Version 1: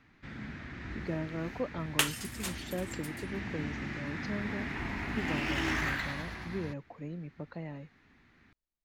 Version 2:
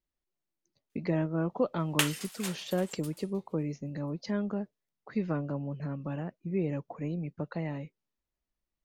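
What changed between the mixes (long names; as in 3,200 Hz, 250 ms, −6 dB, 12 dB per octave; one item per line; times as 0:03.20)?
speech +6.5 dB
first sound: muted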